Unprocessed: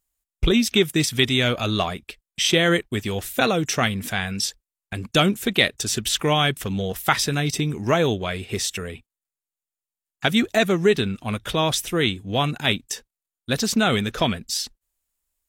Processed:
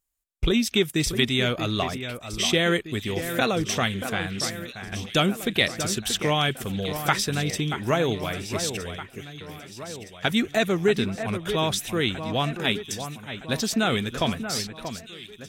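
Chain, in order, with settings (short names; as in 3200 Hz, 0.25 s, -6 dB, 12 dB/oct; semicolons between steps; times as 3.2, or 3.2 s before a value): on a send: echo with dull and thin repeats by turns 0.633 s, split 2400 Hz, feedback 70%, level -9 dB; 3.87–4.44 on the sum: Doppler distortion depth 0.11 ms; gain -3.5 dB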